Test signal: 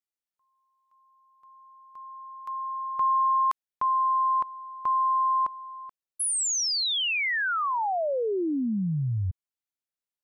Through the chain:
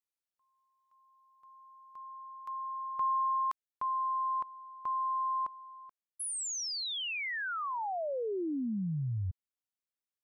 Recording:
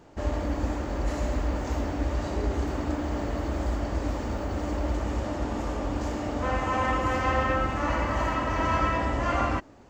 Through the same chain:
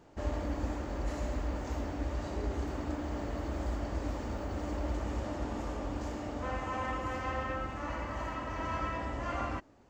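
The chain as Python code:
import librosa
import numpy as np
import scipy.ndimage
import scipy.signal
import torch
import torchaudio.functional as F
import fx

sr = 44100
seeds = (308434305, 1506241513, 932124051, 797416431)

y = fx.rider(x, sr, range_db=5, speed_s=2.0)
y = y * 10.0 ** (-8.5 / 20.0)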